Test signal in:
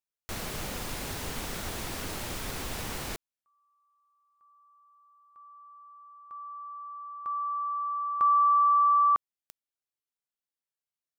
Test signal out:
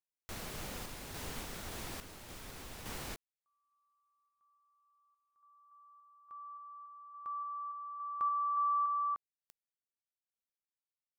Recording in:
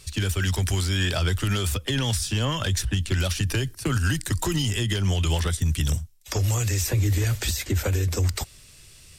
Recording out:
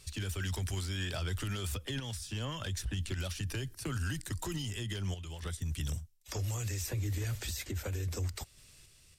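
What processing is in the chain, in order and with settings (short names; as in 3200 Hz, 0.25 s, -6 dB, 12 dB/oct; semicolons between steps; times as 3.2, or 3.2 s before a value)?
random-step tremolo 3.5 Hz, depth 80%; limiter -21.5 dBFS; gain -6.5 dB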